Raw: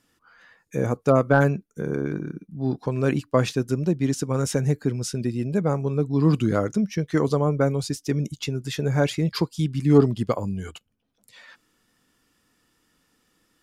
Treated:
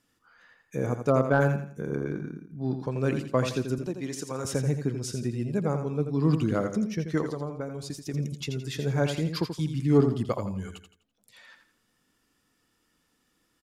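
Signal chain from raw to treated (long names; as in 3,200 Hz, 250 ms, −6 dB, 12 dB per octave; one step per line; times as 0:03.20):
0:03.78–0:04.45: high-pass filter 440 Hz 6 dB per octave
0:07.21–0:08.14: downward compressor 6 to 1, threshold −26 dBFS, peak gain reduction 10 dB
repeating echo 84 ms, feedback 34%, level −8 dB
level −5 dB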